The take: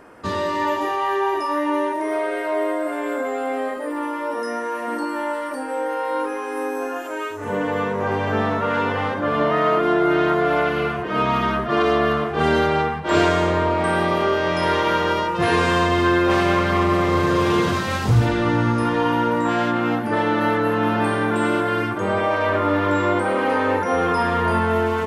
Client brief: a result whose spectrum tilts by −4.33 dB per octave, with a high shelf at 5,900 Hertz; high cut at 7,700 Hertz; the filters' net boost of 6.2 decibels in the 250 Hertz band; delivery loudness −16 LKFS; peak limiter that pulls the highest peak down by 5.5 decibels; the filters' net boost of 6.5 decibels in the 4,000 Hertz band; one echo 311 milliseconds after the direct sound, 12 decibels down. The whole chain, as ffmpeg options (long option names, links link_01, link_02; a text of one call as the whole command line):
ffmpeg -i in.wav -af "lowpass=7700,equalizer=frequency=250:width_type=o:gain=8.5,equalizer=frequency=4000:width_type=o:gain=7,highshelf=frequency=5900:gain=6,alimiter=limit=-7dB:level=0:latency=1,aecho=1:1:311:0.251,volume=2dB" out.wav